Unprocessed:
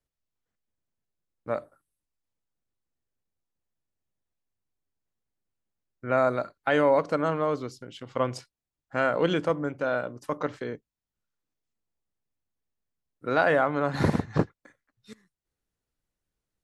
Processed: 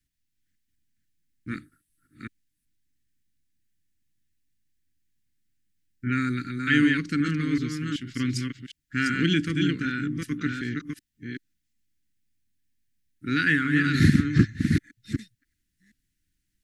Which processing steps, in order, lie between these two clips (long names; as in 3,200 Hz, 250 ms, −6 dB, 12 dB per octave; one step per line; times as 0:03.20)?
delay that plays each chunk backwards 379 ms, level −4 dB
elliptic band-stop filter 300–1,700 Hz, stop band 60 dB
level +7.5 dB